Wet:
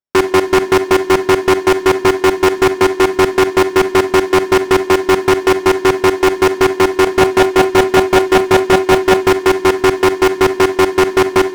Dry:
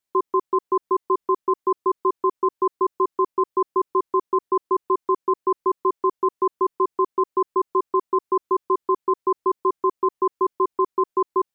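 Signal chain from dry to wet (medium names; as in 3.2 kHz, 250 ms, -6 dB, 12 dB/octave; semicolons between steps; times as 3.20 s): sorted samples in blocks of 8 samples; low-pass 1.1 kHz 6 dB/octave; waveshaping leveller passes 5; 7.04–9.30 s: doubling 29 ms -9.5 dB; reverberation RT60 0.60 s, pre-delay 28 ms, DRR 10.5 dB; loudspeaker Doppler distortion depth 0.56 ms; trim +6.5 dB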